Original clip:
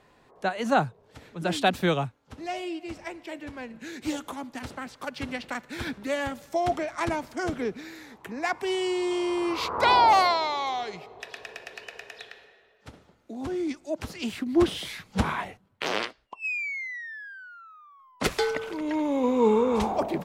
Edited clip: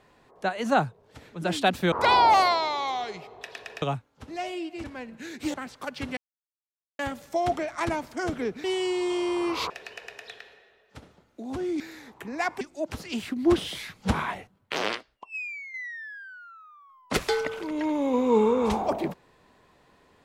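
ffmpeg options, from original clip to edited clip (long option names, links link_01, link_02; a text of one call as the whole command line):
ffmpeg -i in.wav -filter_complex "[0:a]asplit=12[link_01][link_02][link_03][link_04][link_05][link_06][link_07][link_08][link_09][link_10][link_11][link_12];[link_01]atrim=end=1.922[link_13];[link_02]atrim=start=9.708:end=11.612[link_14];[link_03]atrim=start=1.918:end=2.942[link_15];[link_04]atrim=start=3.458:end=4.162[link_16];[link_05]atrim=start=4.738:end=5.37,asetpts=PTS-STARTPTS,afade=type=out:start_time=0.628:duration=0.004:curve=hsin[link_17];[link_06]atrim=start=5.37:end=6.19,asetpts=PTS-STARTPTS,volume=0[link_18];[link_07]atrim=start=6.19:end=7.842,asetpts=PTS-STARTPTS,afade=type=in:duration=0.004:curve=hsin[link_19];[link_08]atrim=start=8.648:end=9.712[link_20];[link_09]atrim=start=11.608:end=13.712[link_21];[link_10]atrim=start=7.838:end=8.652[link_22];[link_11]atrim=start=13.708:end=16.84,asetpts=PTS-STARTPTS,afade=type=out:start_time=2.272:duration=0.86:silence=0.354813[link_23];[link_12]atrim=start=16.84,asetpts=PTS-STARTPTS,afade=type=in:duration=0.004:curve=hsin:silence=0.354813[link_24];[link_13][link_14]acrossfade=duration=0.004:curve1=hsin:curve2=hsin[link_25];[link_25][link_15]acrossfade=duration=0.004:curve1=hsin:curve2=hsin[link_26];[link_26][link_16]acrossfade=duration=0.004:curve1=hsin:curve2=hsin[link_27];[link_17][link_18][link_19]concat=n=3:v=0:a=1[link_28];[link_27][link_28]acrossfade=duration=0.004:curve1=hsin:curve2=hsin[link_29];[link_29][link_20]acrossfade=duration=0.004:curve1=hsin:curve2=hsin[link_30];[link_30][link_21]acrossfade=duration=0.004:curve1=hsin:curve2=hsin[link_31];[link_31][link_22]acrossfade=duration=0.004:curve1=hsin:curve2=hsin[link_32];[link_23][link_24]concat=n=2:v=0:a=1[link_33];[link_32][link_33]acrossfade=duration=0.004:curve1=hsin:curve2=hsin" out.wav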